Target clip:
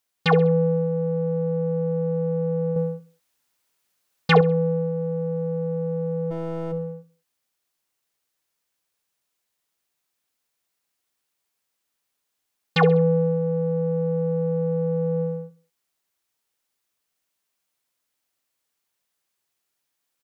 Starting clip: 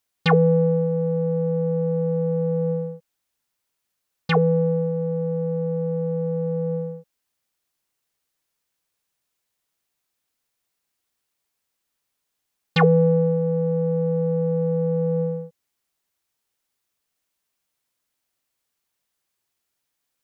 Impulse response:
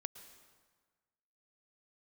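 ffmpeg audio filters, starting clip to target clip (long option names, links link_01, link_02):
-filter_complex "[0:a]asplit=3[link_01][link_02][link_03];[link_01]afade=type=out:start_time=6.3:duration=0.02[link_04];[link_02]aeval=exprs='clip(val(0),-1,0.0168)':channel_layout=same,afade=type=in:start_time=6.3:duration=0.02,afade=type=out:start_time=6.71:duration=0.02[link_05];[link_03]afade=type=in:start_time=6.71:duration=0.02[link_06];[link_04][link_05][link_06]amix=inputs=3:normalize=0,aecho=1:1:66|132|198:0.168|0.0638|0.0242,asettb=1/sr,asplit=3[link_07][link_08][link_09];[link_07]atrim=end=2.764[link_10];[link_08]atrim=start=2.76:end=4.41,asetpts=PTS-STARTPTS,afade=type=in:duration=0.004:curve=qsin,afade=type=out:start_time=1.646:duration=0.004:curve=qsin,acontrast=36[link_11];[link_09]atrim=start=4.406[link_12];[link_10][link_11]acrossfade=duration=0.004:curve1=hsin:curve2=qsin[link_13];[link_13][link_12]acrossfade=duration=0.004:curve1=qsin:curve2=hsin,asplit=2[link_14][link_15];[1:a]atrim=start_sample=2205,atrim=end_sample=4410,lowshelf=frequency=120:gain=-12[link_16];[link_15][link_16]afir=irnorm=-1:irlink=0,volume=8dB[link_17];[link_14][link_17]amix=inputs=2:normalize=0,volume=-8.5dB"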